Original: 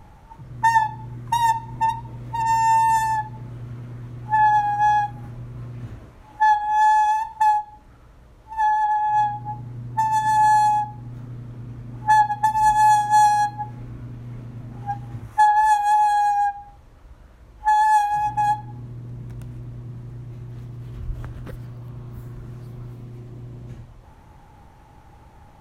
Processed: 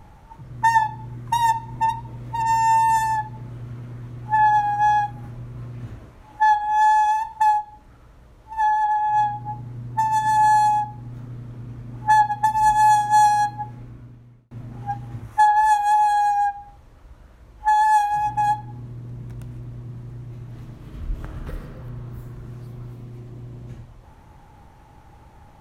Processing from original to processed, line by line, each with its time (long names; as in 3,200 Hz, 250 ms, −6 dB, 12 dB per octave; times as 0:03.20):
0:13.55–0:14.51: fade out
0:20.39–0:21.63: thrown reverb, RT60 2.5 s, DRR 0.5 dB